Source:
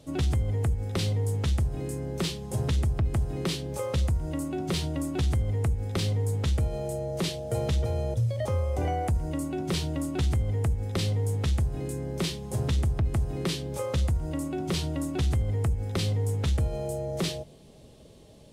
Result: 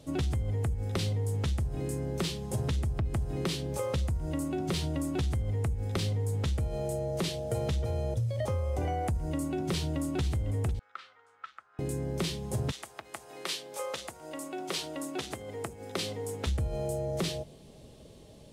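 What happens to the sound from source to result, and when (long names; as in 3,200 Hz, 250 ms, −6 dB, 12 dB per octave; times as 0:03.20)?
0:09.74–0:10.21: delay throw 500 ms, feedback 25%, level −11.5 dB
0:10.79–0:11.79: four-pole ladder band-pass 1,400 Hz, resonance 80%
0:12.70–0:16.46: high-pass filter 940 Hz → 240 Hz
whole clip: downward compressor, threshold −27 dBFS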